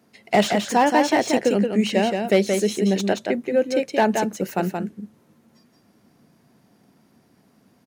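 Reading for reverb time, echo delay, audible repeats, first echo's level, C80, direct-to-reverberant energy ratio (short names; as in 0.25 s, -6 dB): none, 0.175 s, 1, -5.0 dB, none, none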